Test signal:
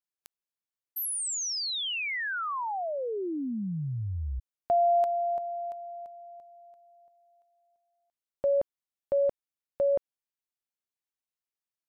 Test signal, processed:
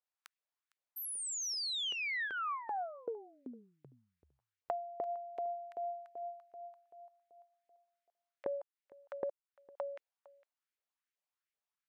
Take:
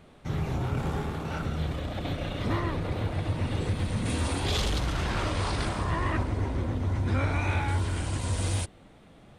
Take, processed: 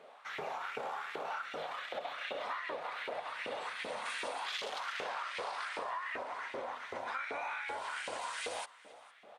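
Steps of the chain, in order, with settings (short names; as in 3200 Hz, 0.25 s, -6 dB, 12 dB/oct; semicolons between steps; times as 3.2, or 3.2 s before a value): LPF 3500 Hz 6 dB/oct; bell 340 Hz -9.5 dB 0.32 oct; LFO high-pass saw up 2.6 Hz 410–2300 Hz; compressor 20:1, threshold -35 dBFS; low shelf 180 Hz -10 dB; echo 0.457 s -22 dB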